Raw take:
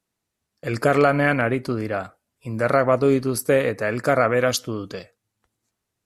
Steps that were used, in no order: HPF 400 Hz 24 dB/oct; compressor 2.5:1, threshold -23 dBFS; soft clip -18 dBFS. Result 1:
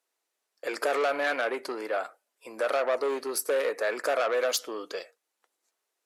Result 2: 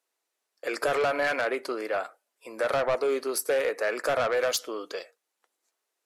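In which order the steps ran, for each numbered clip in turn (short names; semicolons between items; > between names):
soft clip > compressor > HPF; HPF > soft clip > compressor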